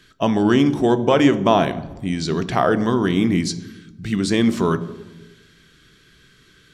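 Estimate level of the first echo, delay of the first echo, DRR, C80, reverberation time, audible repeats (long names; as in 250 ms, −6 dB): no echo audible, no echo audible, 11.0 dB, 16.5 dB, 1.2 s, no echo audible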